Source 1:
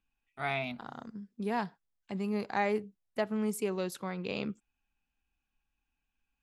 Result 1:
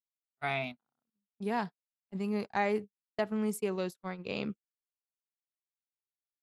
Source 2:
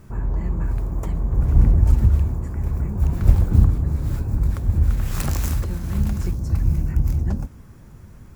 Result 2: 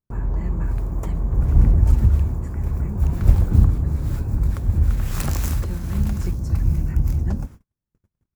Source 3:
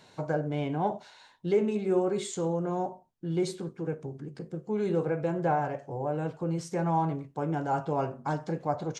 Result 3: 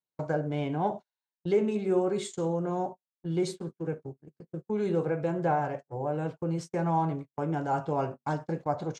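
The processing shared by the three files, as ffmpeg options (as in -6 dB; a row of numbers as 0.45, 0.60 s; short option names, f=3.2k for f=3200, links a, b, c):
-af "agate=range=-44dB:threshold=-36dB:ratio=16:detection=peak"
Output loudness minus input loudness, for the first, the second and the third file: 0.0, 0.0, 0.0 LU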